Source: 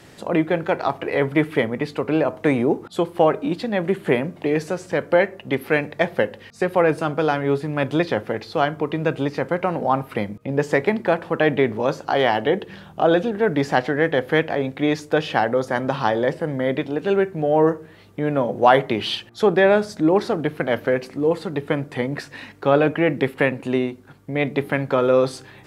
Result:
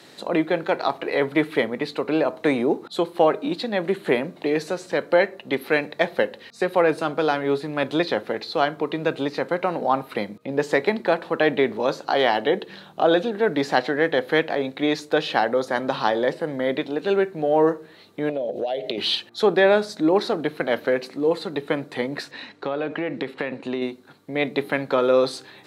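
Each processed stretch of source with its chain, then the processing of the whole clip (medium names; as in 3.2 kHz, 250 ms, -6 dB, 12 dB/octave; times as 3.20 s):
18.29–18.98 s: FFT filter 260 Hz 0 dB, 640 Hz +10 dB, 1.1 kHz -21 dB, 2.8 kHz +6 dB, 8.8 kHz -1 dB + compression 12:1, threshold -21 dBFS
22.31–23.82 s: compression 10:1, threshold -19 dBFS + distance through air 68 m
whole clip: high-pass 220 Hz 12 dB/octave; peaking EQ 4 kHz +11.5 dB 0.26 oct; trim -1 dB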